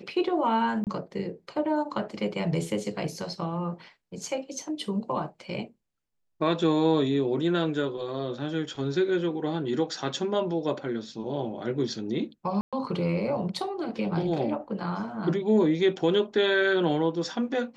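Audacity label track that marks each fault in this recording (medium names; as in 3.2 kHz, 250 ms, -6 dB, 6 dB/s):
0.840000	0.870000	dropout 28 ms
12.610000	12.730000	dropout 116 ms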